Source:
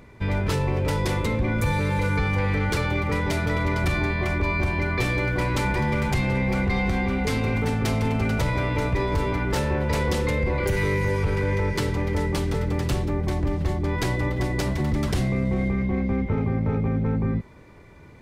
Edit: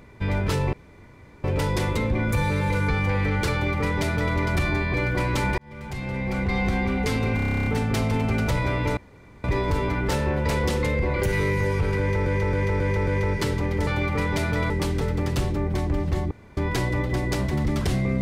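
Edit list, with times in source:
0.73 insert room tone 0.71 s
2.81–3.64 copy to 12.23
4.23–5.15 cut
5.79–6.85 fade in
7.57 stutter 0.03 s, 11 plays
8.88 insert room tone 0.47 s
11.43–11.7 loop, 5 plays
13.84 insert room tone 0.26 s

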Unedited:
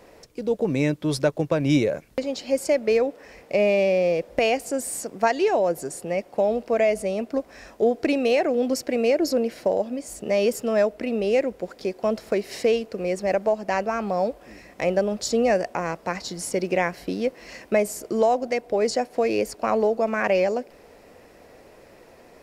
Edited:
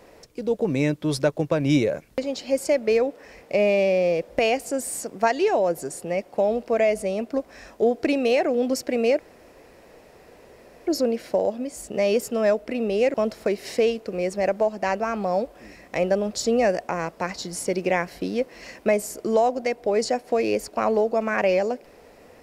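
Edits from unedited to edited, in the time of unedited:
9.19 insert room tone 1.68 s
11.46–12 cut

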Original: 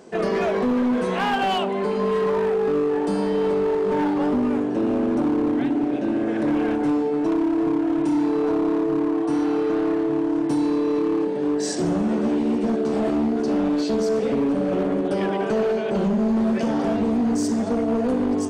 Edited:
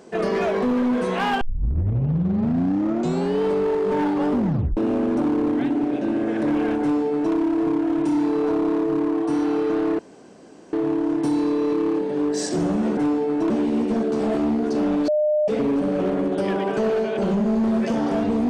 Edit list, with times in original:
1.41 tape start 2.01 s
4.37 tape stop 0.40 s
6.81–7.34 copy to 12.23
9.99 insert room tone 0.74 s
13.81–14.21 bleep 605 Hz -16.5 dBFS

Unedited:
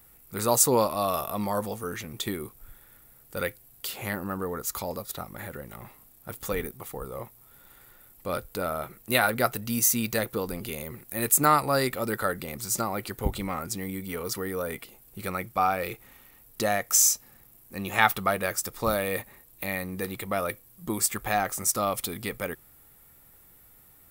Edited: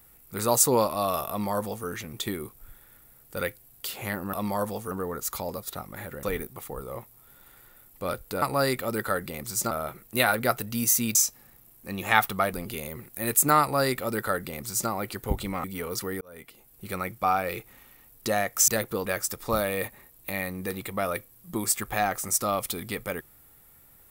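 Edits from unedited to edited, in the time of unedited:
1.29–1.87 copy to 4.33
5.65–6.47 cut
10.1–10.48 swap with 17.02–18.4
11.56–12.85 copy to 8.66
13.59–13.98 cut
14.55–15.43 fade in equal-power

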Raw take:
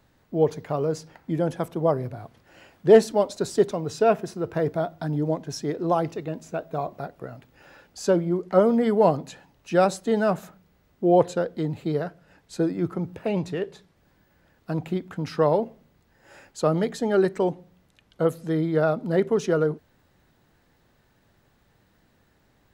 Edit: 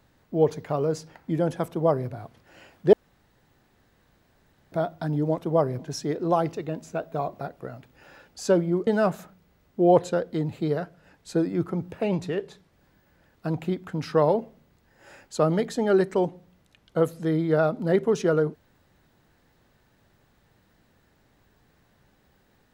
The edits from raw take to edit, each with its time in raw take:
1.68–2.09 copy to 5.38
2.93–4.72 room tone
8.46–10.11 cut

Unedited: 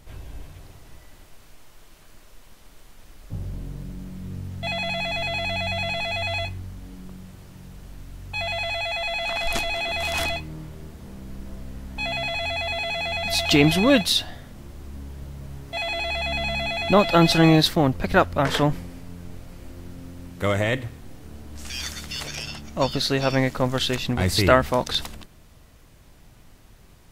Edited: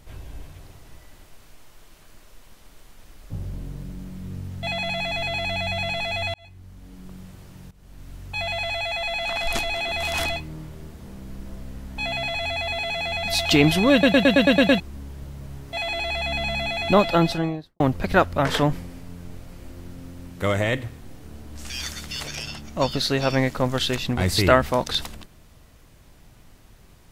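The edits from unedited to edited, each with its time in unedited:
6.34–7.19 fade in
7.71–8.1 fade in, from -18 dB
13.92 stutter in place 0.11 s, 8 plays
16.93–17.8 studio fade out

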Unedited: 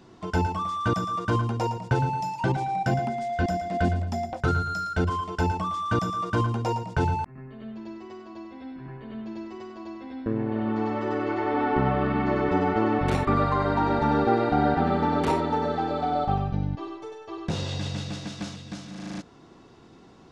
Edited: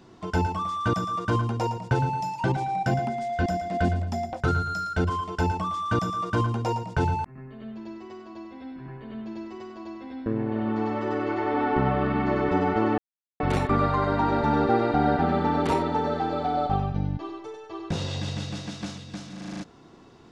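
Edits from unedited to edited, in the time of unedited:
12.98 insert silence 0.42 s

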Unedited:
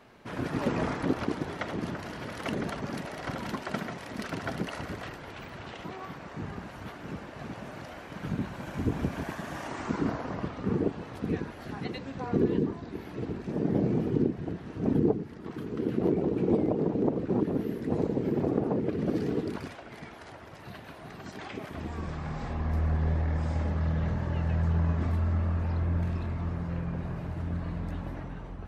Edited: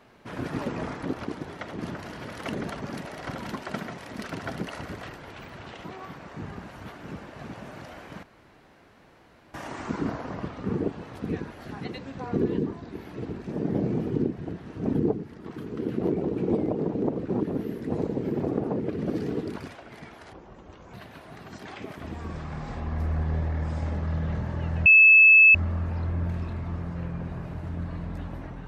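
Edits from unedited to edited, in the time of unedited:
0.63–1.79 gain -3 dB
8.23–9.54 room tone
20.33–20.67 speed 56%
24.59–25.28 bleep 2610 Hz -10.5 dBFS

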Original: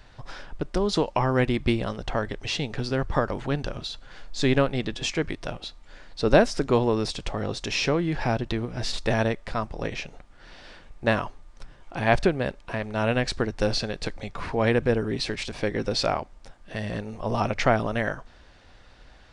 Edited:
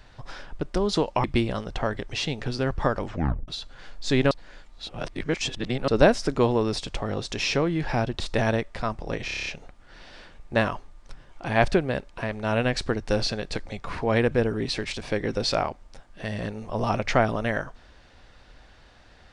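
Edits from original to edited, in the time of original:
1.24–1.56 cut
3.36 tape stop 0.44 s
4.63–6.2 reverse
8.52–8.92 cut
9.97 stutter 0.03 s, 8 plays

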